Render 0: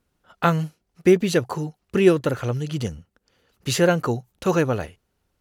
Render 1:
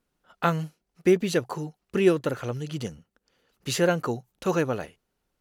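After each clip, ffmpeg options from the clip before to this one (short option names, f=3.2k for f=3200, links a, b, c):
-af "equalizer=f=84:w=1.7:g=-10.5,volume=-4dB"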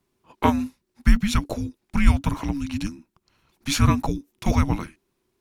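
-af "afreqshift=-410,volume=4.5dB"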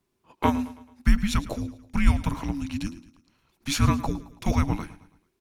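-af "aecho=1:1:109|218|327|436:0.141|0.0664|0.0312|0.0147,volume=-3dB"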